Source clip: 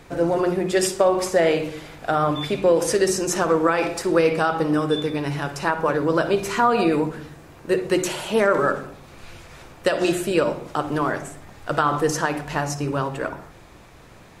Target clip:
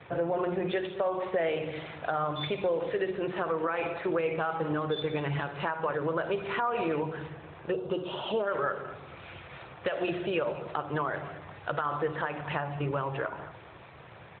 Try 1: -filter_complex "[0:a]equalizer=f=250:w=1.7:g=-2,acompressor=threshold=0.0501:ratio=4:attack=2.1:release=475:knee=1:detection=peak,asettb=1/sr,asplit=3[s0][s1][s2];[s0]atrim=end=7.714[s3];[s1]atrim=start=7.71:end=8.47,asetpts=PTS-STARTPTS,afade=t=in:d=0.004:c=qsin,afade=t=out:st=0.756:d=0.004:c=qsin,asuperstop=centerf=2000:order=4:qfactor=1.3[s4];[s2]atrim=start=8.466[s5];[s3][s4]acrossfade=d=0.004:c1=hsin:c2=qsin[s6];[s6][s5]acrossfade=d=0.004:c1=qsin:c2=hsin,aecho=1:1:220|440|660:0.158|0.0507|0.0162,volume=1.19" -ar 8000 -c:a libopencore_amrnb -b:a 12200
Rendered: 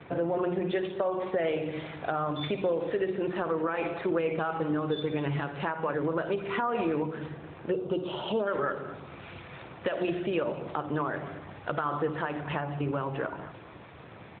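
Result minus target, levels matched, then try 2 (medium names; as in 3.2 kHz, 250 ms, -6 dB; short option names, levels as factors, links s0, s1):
250 Hz band +3.0 dB
-filter_complex "[0:a]equalizer=f=250:w=1.7:g=-12,acompressor=threshold=0.0501:ratio=4:attack=2.1:release=475:knee=1:detection=peak,asettb=1/sr,asplit=3[s0][s1][s2];[s0]atrim=end=7.714[s3];[s1]atrim=start=7.71:end=8.47,asetpts=PTS-STARTPTS,afade=t=in:d=0.004:c=qsin,afade=t=out:st=0.756:d=0.004:c=qsin,asuperstop=centerf=2000:order=4:qfactor=1.3[s4];[s2]atrim=start=8.466[s5];[s3][s4]acrossfade=d=0.004:c1=hsin:c2=qsin[s6];[s6][s5]acrossfade=d=0.004:c1=qsin:c2=hsin,aecho=1:1:220|440|660:0.158|0.0507|0.0162,volume=1.19" -ar 8000 -c:a libopencore_amrnb -b:a 12200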